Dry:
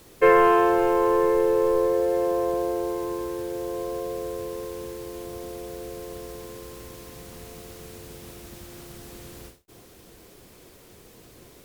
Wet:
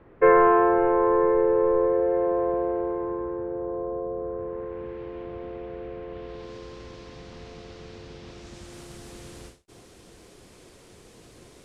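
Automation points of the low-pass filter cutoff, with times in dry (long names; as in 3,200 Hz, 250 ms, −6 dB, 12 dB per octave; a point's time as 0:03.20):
low-pass filter 24 dB per octave
0:02.77 1,900 Hz
0:04.11 1,100 Hz
0:04.99 2,600 Hz
0:06.08 2,600 Hz
0:06.53 5,200 Hz
0:08.26 5,200 Hz
0:08.78 10,000 Hz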